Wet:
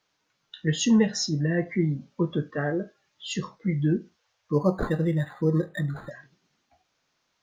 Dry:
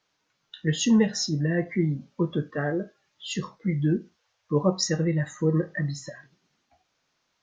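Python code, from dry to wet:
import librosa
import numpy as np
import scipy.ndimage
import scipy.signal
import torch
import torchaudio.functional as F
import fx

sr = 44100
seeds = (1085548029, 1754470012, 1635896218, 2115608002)

y = fx.resample_linear(x, sr, factor=8, at=(4.53, 6.11))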